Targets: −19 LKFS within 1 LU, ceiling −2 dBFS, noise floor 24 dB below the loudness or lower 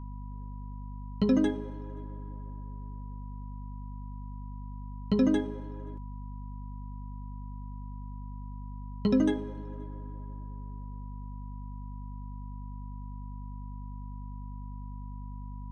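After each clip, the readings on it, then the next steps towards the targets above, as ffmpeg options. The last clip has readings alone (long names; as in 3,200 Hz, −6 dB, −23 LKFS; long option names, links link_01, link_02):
mains hum 50 Hz; hum harmonics up to 250 Hz; level of the hum −37 dBFS; interfering tone 980 Hz; level of the tone −52 dBFS; integrated loudness −36.0 LKFS; sample peak −14.0 dBFS; target loudness −19.0 LKFS
→ -af "bandreject=frequency=50:width_type=h:width=6,bandreject=frequency=100:width_type=h:width=6,bandreject=frequency=150:width_type=h:width=6,bandreject=frequency=200:width_type=h:width=6,bandreject=frequency=250:width_type=h:width=6"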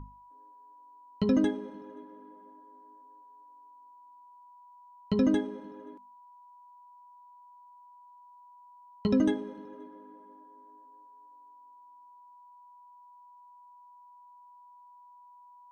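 mains hum none found; interfering tone 980 Hz; level of the tone −52 dBFS
→ -af "bandreject=frequency=980:width=30"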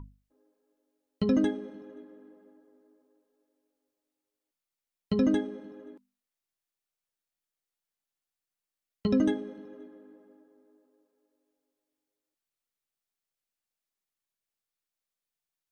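interfering tone none found; integrated loudness −28.5 LKFS; sample peak −14.5 dBFS; target loudness −19.0 LKFS
→ -af "volume=9.5dB"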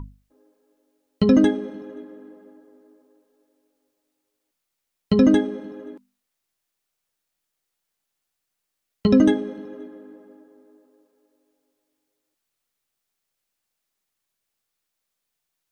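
integrated loudness −19.5 LKFS; sample peak −5.0 dBFS; background noise floor −81 dBFS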